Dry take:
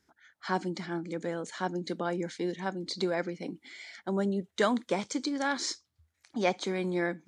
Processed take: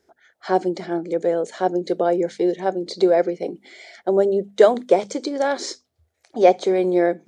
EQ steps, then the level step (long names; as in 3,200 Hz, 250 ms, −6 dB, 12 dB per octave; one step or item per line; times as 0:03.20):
flat-topped bell 520 Hz +13 dB 1.3 octaves
mains-hum notches 50/100/150/200/250 Hz
+3.0 dB